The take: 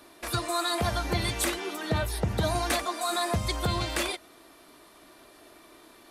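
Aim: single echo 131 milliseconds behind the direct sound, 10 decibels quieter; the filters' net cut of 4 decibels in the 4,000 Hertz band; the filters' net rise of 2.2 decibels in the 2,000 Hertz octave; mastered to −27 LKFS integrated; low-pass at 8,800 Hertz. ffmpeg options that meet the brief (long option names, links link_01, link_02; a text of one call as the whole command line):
ffmpeg -i in.wav -af "lowpass=8800,equalizer=frequency=2000:width_type=o:gain=4,equalizer=frequency=4000:width_type=o:gain=-5.5,aecho=1:1:131:0.316,volume=2dB" out.wav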